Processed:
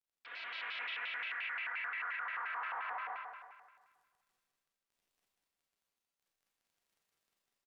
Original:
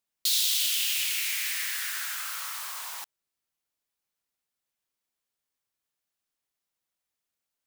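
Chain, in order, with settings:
mu-law and A-law mismatch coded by A
high-pass filter 570 Hz 12 dB per octave
noise gate with hold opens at −27 dBFS
Butterworth low-pass 2,000 Hz 36 dB per octave
comb filter 3.5 ms, depth 65%
surface crackle 20 per second −64 dBFS
echo machine with several playback heads 78 ms, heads all three, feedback 48%, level −7 dB
four-comb reverb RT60 0.85 s, combs from 28 ms, DRR −4.5 dB
brickwall limiter −31 dBFS, peak gain reduction 9.5 dB
pitch modulation by a square or saw wave square 5.7 Hz, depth 250 cents
level −1 dB

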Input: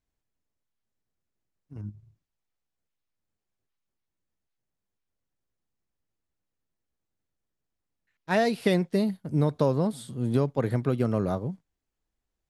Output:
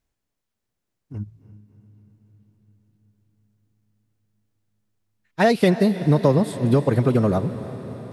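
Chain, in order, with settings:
on a send: feedback delay with all-pass diffusion 510 ms, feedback 69%, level −14 dB
on the sum: phase-vocoder stretch with locked phases 0.65×
level +7.5 dB

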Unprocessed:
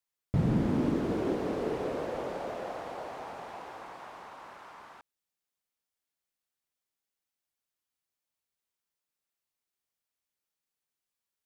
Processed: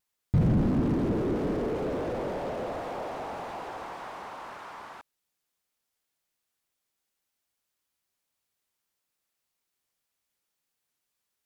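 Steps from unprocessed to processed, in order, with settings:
pitch vibrato 1.8 Hz 35 cents
slew-rate limiting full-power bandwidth 8.2 Hz
level +6.5 dB

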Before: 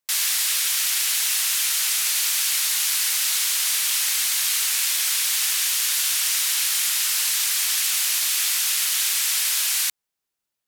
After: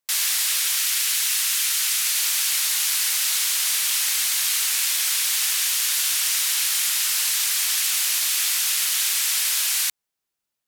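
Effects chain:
0:00.80–0:02.19: high-pass filter 880 Hz 12 dB per octave

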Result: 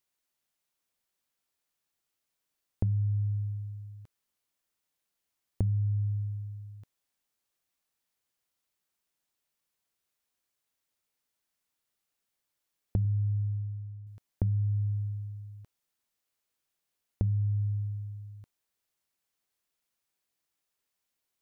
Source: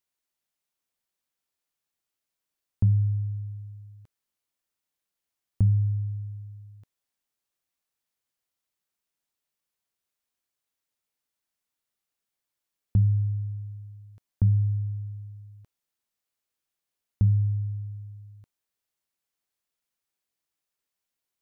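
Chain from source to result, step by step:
0:13.05–0:14.07: Bessel low-pass filter 500 Hz
downward compressor 6 to 1, threshold −28 dBFS, peak gain reduction 10.5 dB
level +2 dB

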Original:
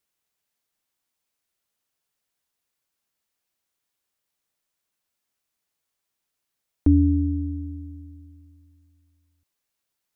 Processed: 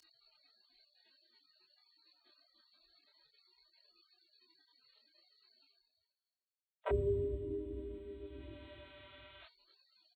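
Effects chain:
mains-hum notches 60/120/180 Hz
one-pitch LPC vocoder at 8 kHz 190 Hz
gate on every frequency bin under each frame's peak −30 dB weak
reversed playback
upward compression, threshold −49 dBFS
reversed playback
comb filter 3.2 ms, depth 88%
multi-voice chorus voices 4, 0.91 Hz, delay 26 ms, depth 3.3 ms
frequency shifter +23 Hz
level +12 dB

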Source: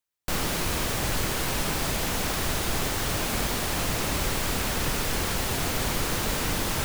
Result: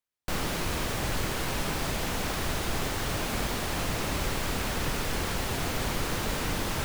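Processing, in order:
high-shelf EQ 5,200 Hz −5.5 dB
level −2 dB

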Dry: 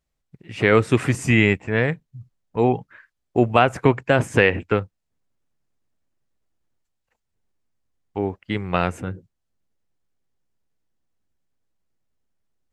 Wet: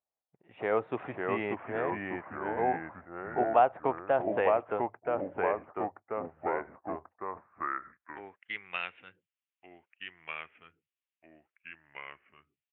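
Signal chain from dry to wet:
downsampling to 8,000 Hz
delay with pitch and tempo change per echo 474 ms, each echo −2 semitones, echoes 3
band-pass filter sweep 750 Hz → 2,700 Hz, 0:07.06–0:08.85
level −3.5 dB

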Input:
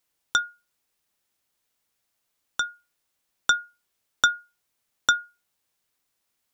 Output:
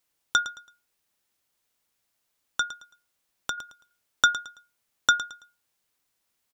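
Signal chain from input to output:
0:02.62–0:03.58: downward compressor 3 to 1, threshold −32 dBFS, peak gain reduction 12.5 dB
repeating echo 110 ms, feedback 29%, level −14 dB

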